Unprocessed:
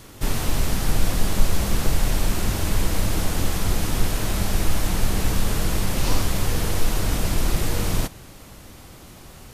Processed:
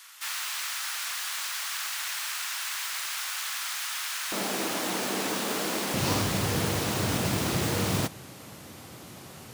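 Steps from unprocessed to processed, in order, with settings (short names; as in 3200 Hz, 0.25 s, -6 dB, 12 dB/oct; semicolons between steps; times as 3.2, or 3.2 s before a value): tracing distortion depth 0.055 ms; HPF 1200 Hz 24 dB/oct, from 4.32 s 240 Hz, from 5.94 s 100 Hz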